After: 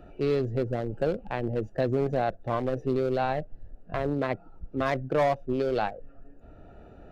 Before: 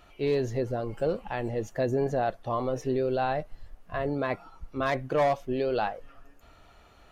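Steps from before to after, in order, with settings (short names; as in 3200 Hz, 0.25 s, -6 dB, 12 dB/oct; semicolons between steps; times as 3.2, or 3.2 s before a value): Wiener smoothing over 41 samples; three-band squash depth 40%; gain +2 dB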